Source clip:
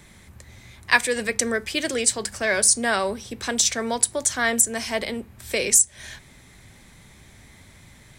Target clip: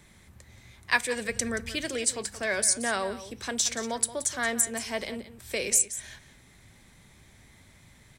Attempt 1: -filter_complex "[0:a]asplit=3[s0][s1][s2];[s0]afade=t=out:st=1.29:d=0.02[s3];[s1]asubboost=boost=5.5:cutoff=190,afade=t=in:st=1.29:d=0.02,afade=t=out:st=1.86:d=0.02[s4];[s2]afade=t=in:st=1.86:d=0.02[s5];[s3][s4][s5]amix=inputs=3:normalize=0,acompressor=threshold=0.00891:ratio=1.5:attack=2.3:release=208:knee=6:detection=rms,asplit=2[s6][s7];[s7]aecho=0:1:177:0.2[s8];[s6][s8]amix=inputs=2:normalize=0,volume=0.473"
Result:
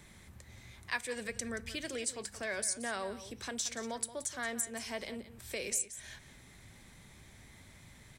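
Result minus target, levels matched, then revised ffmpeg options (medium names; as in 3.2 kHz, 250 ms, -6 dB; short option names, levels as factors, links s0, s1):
compression: peak gain reduction +12 dB
-filter_complex "[0:a]asplit=3[s0][s1][s2];[s0]afade=t=out:st=1.29:d=0.02[s3];[s1]asubboost=boost=5.5:cutoff=190,afade=t=in:st=1.29:d=0.02,afade=t=out:st=1.86:d=0.02[s4];[s2]afade=t=in:st=1.86:d=0.02[s5];[s3][s4][s5]amix=inputs=3:normalize=0,asplit=2[s6][s7];[s7]aecho=0:1:177:0.2[s8];[s6][s8]amix=inputs=2:normalize=0,volume=0.473"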